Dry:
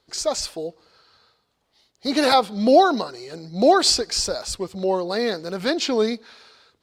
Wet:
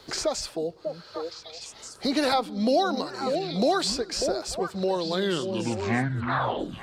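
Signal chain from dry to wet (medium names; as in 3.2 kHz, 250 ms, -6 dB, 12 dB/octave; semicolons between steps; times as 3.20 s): tape stop on the ending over 1.89 s; repeats whose band climbs or falls 296 ms, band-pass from 170 Hz, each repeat 1.4 oct, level -5.5 dB; three bands compressed up and down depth 70%; trim -4.5 dB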